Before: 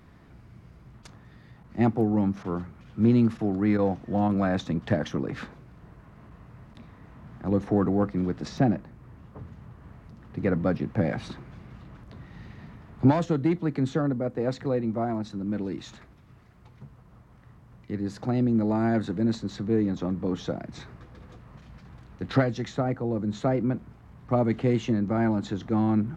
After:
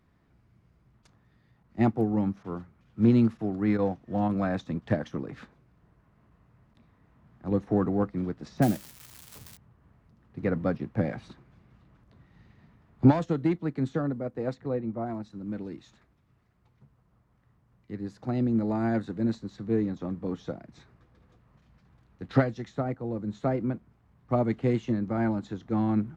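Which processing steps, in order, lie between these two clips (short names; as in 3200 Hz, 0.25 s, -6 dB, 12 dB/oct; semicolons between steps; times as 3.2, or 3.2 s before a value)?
8.62–9.57 switching spikes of -21 dBFS; 14.54–15.05 high shelf 3600 Hz -> 2300 Hz -9 dB; upward expander 1.5:1, over -44 dBFS; gain +1.5 dB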